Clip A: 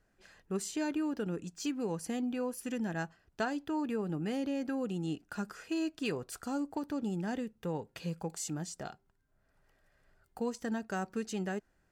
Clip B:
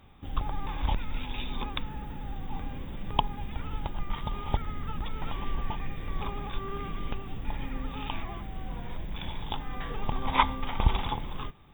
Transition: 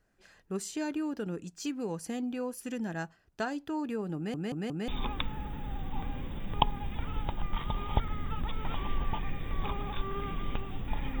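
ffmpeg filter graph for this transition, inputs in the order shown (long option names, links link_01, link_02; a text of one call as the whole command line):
ffmpeg -i cue0.wav -i cue1.wav -filter_complex "[0:a]apad=whole_dur=11.2,atrim=end=11.2,asplit=4[link_01][link_02][link_03][link_04];[link_01]atrim=end=4.342[link_05];[link_02]atrim=start=4.158:end=4.342[link_06];[link_03]atrim=start=4.158:end=4.342[link_07];[link_04]atrim=start=4.158:end=4.342[link_08];[1:a]atrim=start=1.448:end=7.77[link_09];[link_05][link_06]acrossfade=duration=0.004:curve1=hsin:curve2=hsin[link_10];[link_10][link_07]acrossfade=duration=0.004:curve1=hsin:curve2=hsin[link_11];[link_11][link_08]acrossfade=duration=0.004:curve1=hsin:curve2=hsin[link_12];[link_12][link_09]acrossfade=duration=0.004:curve1=hsin:curve2=hsin" out.wav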